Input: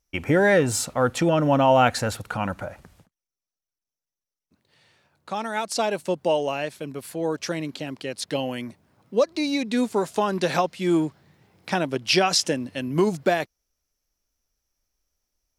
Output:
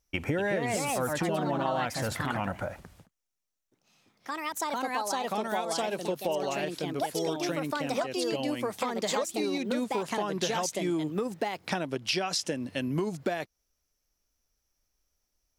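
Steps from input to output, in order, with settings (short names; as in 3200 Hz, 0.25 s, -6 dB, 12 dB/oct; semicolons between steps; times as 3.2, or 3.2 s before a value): echoes that change speed 0.264 s, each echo +3 st, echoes 2; compressor 6:1, threshold -27 dBFS, peak gain reduction 15 dB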